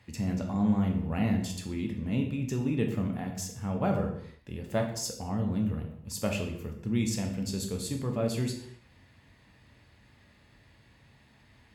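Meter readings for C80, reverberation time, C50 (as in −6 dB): 9.5 dB, non-exponential decay, 6.5 dB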